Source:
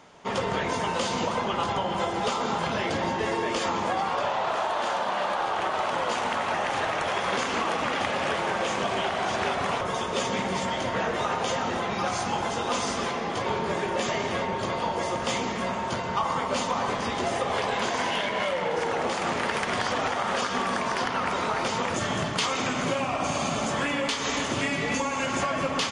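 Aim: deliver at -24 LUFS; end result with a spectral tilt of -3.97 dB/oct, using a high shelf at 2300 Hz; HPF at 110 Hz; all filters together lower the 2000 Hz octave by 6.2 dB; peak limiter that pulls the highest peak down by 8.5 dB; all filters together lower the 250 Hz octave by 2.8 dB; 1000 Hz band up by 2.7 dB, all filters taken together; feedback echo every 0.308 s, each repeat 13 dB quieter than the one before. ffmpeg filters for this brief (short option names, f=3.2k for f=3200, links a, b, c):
-af "highpass=110,equalizer=f=250:t=o:g=-3.5,equalizer=f=1k:t=o:g=6,equalizer=f=2k:t=o:g=-8.5,highshelf=f=2.3k:g=-3.5,alimiter=limit=-21dB:level=0:latency=1,aecho=1:1:308|616|924:0.224|0.0493|0.0108,volume=5.5dB"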